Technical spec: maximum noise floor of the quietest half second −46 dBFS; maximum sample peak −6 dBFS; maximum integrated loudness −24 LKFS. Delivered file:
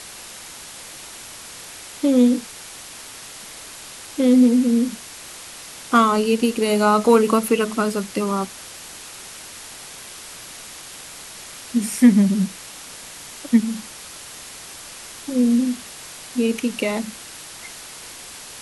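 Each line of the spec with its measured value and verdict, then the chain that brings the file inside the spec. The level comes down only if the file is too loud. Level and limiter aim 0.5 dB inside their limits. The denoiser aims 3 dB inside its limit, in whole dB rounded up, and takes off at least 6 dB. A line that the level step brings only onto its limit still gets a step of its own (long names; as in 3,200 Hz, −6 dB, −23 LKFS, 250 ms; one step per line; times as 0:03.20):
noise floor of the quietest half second −38 dBFS: out of spec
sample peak −3.0 dBFS: out of spec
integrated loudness −19.0 LKFS: out of spec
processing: broadband denoise 6 dB, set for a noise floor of −38 dBFS
level −5.5 dB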